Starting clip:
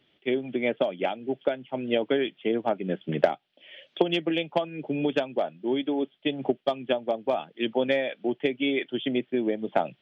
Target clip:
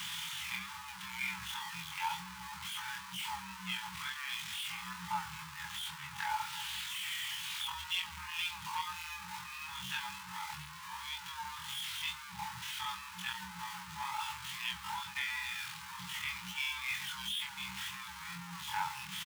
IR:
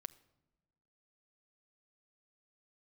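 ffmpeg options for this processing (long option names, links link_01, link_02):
-filter_complex "[0:a]aeval=exprs='val(0)+0.5*0.0531*sgn(val(0))':channel_layout=same,afftfilt=real='re*(1-between(b*sr/4096,120,760))':imag='im*(1-between(b*sr/4096,120,760))':win_size=4096:overlap=0.75,adynamicequalizer=threshold=0.0112:dfrequency=210:dqfactor=1:tfrequency=210:tqfactor=1:attack=5:release=100:ratio=0.375:range=2.5:mode=boostabove:tftype=bell,atempo=0.52,aeval=exprs='0.15*(abs(mod(val(0)/0.15+3,4)-2)-1)':channel_layout=same,afreqshift=66,asplit=2[link_01][link_02];[link_02]aecho=0:1:131:0.0668[link_03];[link_01][link_03]amix=inputs=2:normalize=0,flanger=delay=22.5:depth=3.5:speed=2.1,volume=-5dB"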